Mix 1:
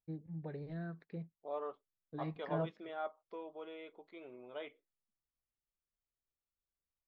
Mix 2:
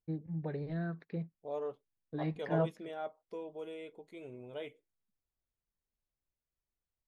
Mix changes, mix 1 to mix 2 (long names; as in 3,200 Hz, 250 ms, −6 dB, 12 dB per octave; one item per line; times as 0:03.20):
first voice +6.0 dB
second voice: remove loudspeaker in its box 330–4,100 Hz, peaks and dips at 460 Hz −5 dB, 1,200 Hz +8 dB, 2,700 Hz −3 dB